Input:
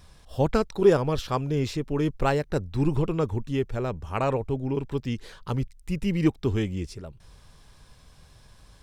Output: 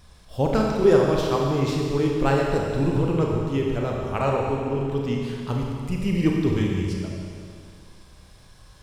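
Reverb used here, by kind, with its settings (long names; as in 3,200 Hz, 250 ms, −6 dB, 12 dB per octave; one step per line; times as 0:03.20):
four-comb reverb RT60 2.3 s, combs from 29 ms, DRR −1 dB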